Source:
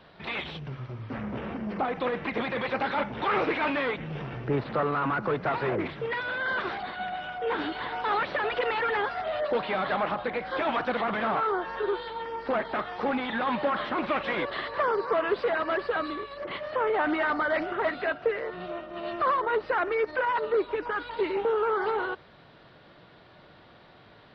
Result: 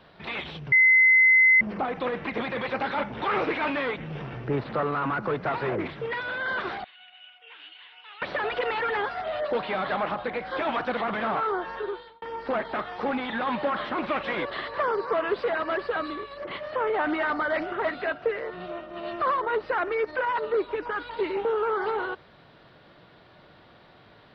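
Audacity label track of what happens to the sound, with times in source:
0.720000	1.610000	bleep 2.05 kHz -14 dBFS
6.840000	8.220000	band-pass filter 2.8 kHz, Q 6.3
11.700000	12.220000	fade out

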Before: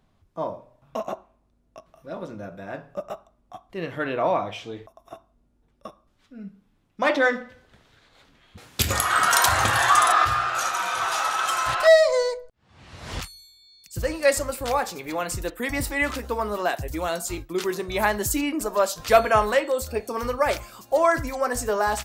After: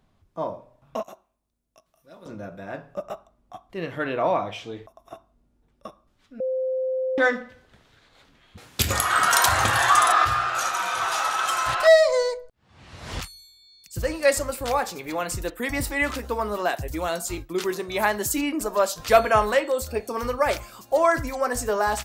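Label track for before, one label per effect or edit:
1.030000	2.260000	pre-emphasis filter coefficient 0.8
6.400000	7.180000	bleep 519 Hz -22.5 dBFS
17.730000	18.380000	high-pass 160 Hz 6 dB/octave

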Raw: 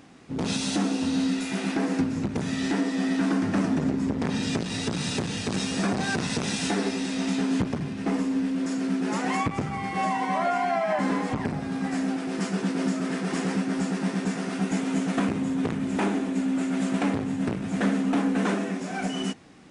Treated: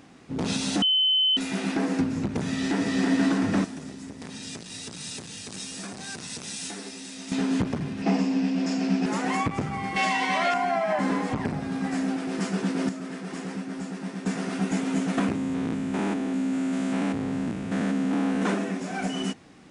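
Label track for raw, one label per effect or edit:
0.820000	1.370000	bleep 3.05 kHz -18.5 dBFS
2.470000	2.950000	echo throw 330 ms, feedback 65%, level -2 dB
3.640000	7.320000	pre-emphasis filter coefficient 0.8
8.020000	9.060000	cabinet simulation 130–7900 Hz, peaks and dips at 190 Hz +7 dB, 730 Hz +8 dB, 1.3 kHz -3 dB, 2.6 kHz +7 dB, 5.1 kHz +9 dB
9.960000	10.540000	frequency weighting D
12.890000	14.260000	gain -7 dB
15.350000	18.420000	spectrogram pixelated in time every 200 ms

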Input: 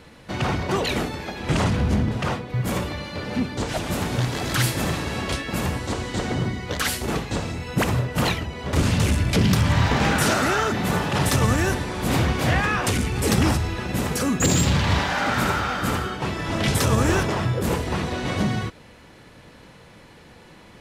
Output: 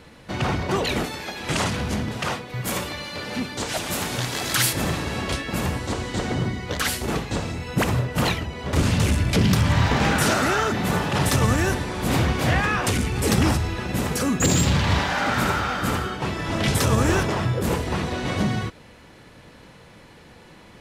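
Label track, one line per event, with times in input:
1.040000	4.730000	tilt EQ +2 dB/octave

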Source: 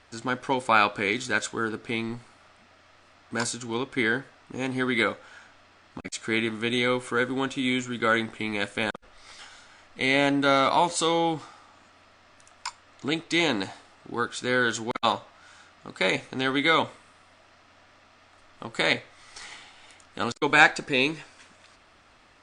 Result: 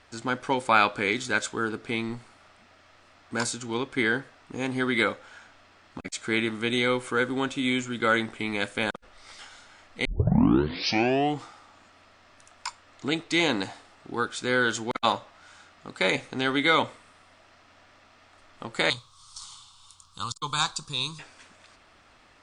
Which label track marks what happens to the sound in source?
10.050000	10.050000	tape start 1.37 s
18.900000	21.190000	FFT filter 150 Hz 0 dB, 250 Hz -16 dB, 410 Hz -18 dB, 710 Hz -20 dB, 1.1 kHz +4 dB, 1.9 kHz -27 dB, 3.5 kHz +1 dB, 12 kHz +6 dB

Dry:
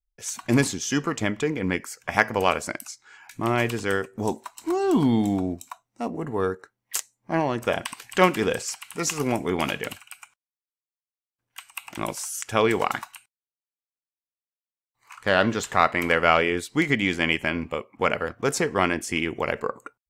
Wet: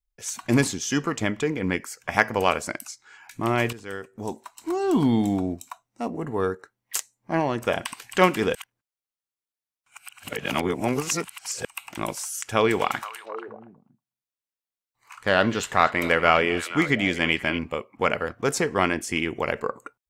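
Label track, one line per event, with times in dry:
3.730000	5.060000	fade in, from -14 dB
8.550000	11.650000	reverse
12.430000	17.590000	repeats whose band climbs or falls 239 ms, band-pass from 3.3 kHz, each repeat -1.4 oct, level -8 dB

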